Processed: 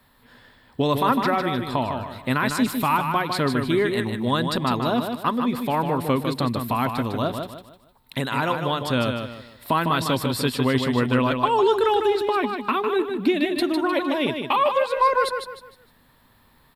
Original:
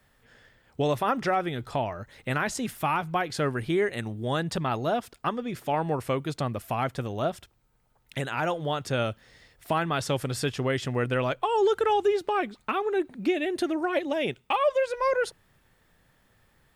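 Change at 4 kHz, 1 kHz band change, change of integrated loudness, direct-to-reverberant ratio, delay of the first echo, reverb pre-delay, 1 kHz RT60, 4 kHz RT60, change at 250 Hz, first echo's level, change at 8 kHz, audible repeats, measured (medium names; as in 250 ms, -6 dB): +7.5 dB, +6.0 dB, +5.5 dB, no reverb, 153 ms, no reverb, no reverb, no reverb, +8.0 dB, -6.0 dB, +2.5 dB, 4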